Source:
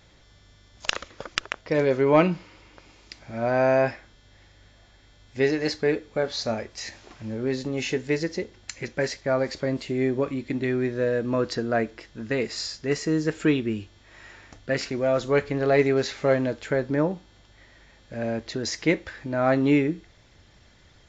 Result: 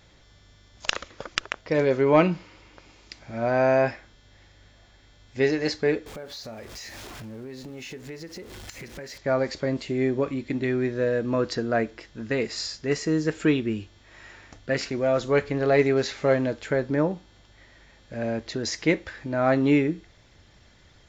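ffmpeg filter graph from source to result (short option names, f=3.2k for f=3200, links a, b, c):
-filter_complex "[0:a]asettb=1/sr,asplit=3[a][b][c];[a]atrim=end=6.064[d];[b]atrim=start=6.06:end=9.18,asetpts=PTS-STARTPTS,afade=t=in:d=0.004:c=qsin,afade=t=out:st=3.116:d=0.004:c=qsin,aeval=exprs='val(0)+0.5*0.0133*sgn(val(0))':c=same,acompressor=threshold=-38dB:ratio=4:attack=3.2:release=140:knee=1:detection=peak[e];[c]atrim=start=9.176[f];[d][e]acrossfade=d=0.004:c1=hsin:c2=qsin[g];[g][f]acrossfade=d=0.004:c1=qsin:c2=hsin"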